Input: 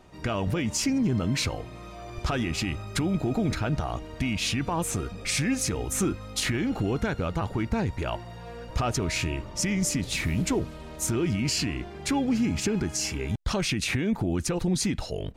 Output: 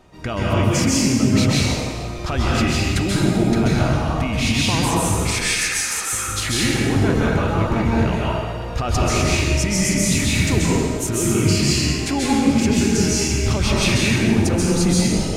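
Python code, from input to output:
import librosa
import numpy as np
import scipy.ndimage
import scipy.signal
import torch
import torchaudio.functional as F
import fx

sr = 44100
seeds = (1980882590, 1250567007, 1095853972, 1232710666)

y = fx.highpass_res(x, sr, hz=1400.0, q=1.6, at=(5.31, 6.13))
y = fx.rev_plate(y, sr, seeds[0], rt60_s=1.8, hf_ratio=0.85, predelay_ms=120, drr_db=-6.0)
y = y * 10.0 ** (2.5 / 20.0)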